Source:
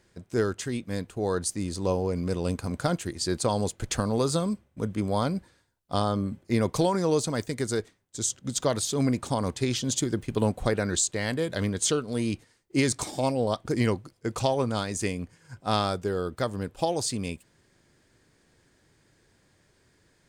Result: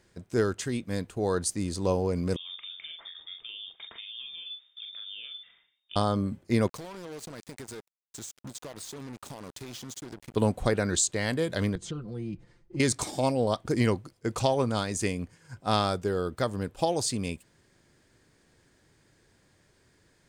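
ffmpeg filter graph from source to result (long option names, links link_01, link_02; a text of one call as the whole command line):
ffmpeg -i in.wav -filter_complex "[0:a]asettb=1/sr,asplit=3[link_01][link_02][link_03];[link_01]atrim=end=2.364[link_04];[link_02]atrim=start=2.36:end=5.96,asetpts=PTS-STARTPTS,afade=type=in:duration=0.004:curve=qsin,afade=type=out:start_time=3.596:duration=0.004:curve=qsin,acompressor=threshold=-41dB:ratio=5:attack=3.2:release=140:knee=1:detection=peak,asplit=2[link_05][link_06];[link_06]adelay=43,volume=-5dB[link_07];[link_05][link_07]amix=inputs=2:normalize=0,atrim=end_sample=158760,lowpass=frequency=3100:width_type=q:width=0.5098,lowpass=frequency=3100:width_type=q:width=0.6013,lowpass=frequency=3100:width_type=q:width=0.9,lowpass=frequency=3100:width_type=q:width=2.563,afreqshift=-3700[link_08];[link_03]atrim=start=5.956[link_09];[link_04][link_08]acrossfade=duration=0.004:curve1=hsin:curve2=qsin[link_10];[link_10][link_09]acrossfade=duration=0.004:curve1=qsin:curve2=hsin,asettb=1/sr,asplit=3[link_11][link_12][link_13];[link_11]atrim=end=6.674[link_14];[link_12]atrim=start=6.67:end=10.36,asetpts=PTS-STARTPTS,afade=type=in:duration=0.004:curve=qsin,afade=type=out:start_time=3.686:duration=0.004:curve=qsin,lowshelf=frequency=130:gain=-6,acompressor=threshold=-39dB:ratio=6:attack=3.2:release=140:knee=1:detection=peak,acrusher=bits=6:mix=0:aa=0.5[link_15];[link_13]atrim=start=10.356[link_16];[link_14][link_15]acrossfade=duration=0.004:curve1=hsin:curve2=qsin[link_17];[link_17][link_16]acrossfade=duration=0.004:curve1=qsin:curve2=hsin,asettb=1/sr,asplit=3[link_18][link_19][link_20];[link_18]atrim=end=11.754[link_21];[link_19]atrim=start=11.75:end=12.8,asetpts=PTS-STARTPTS,afade=type=in:duration=0.004:curve=qsin,afade=type=out:start_time=1.046:duration=0.004:curve=qsin,aemphasis=mode=reproduction:type=riaa,aecho=1:1:5.8:0.91,atrim=end_sample=46305,acompressor=threshold=-46dB:ratio=2:attack=3.2:release=140:knee=1:detection=peak[link_22];[link_20]atrim=start=12.796[link_23];[link_21][link_22]acrossfade=duration=0.004:curve1=hsin:curve2=qsin[link_24];[link_24][link_23]acrossfade=duration=0.004:curve1=qsin:curve2=hsin" out.wav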